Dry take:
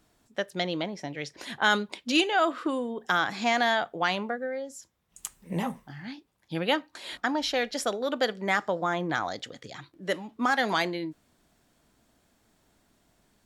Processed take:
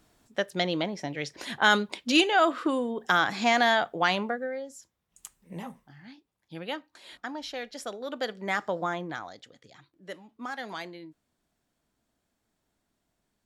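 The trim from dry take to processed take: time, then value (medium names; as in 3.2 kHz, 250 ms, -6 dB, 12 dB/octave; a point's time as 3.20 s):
4.21 s +2 dB
5.38 s -9 dB
7.74 s -9 dB
8.82 s -1 dB
9.33 s -11.5 dB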